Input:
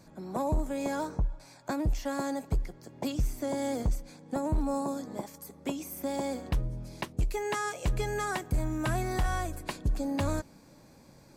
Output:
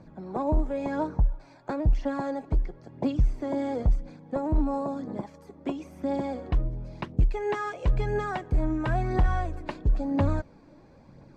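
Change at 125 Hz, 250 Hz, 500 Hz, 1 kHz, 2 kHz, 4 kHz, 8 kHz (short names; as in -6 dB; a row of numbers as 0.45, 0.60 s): +5.0 dB, +3.5 dB, +3.0 dB, +2.0 dB, -0.5 dB, -5.5 dB, under -15 dB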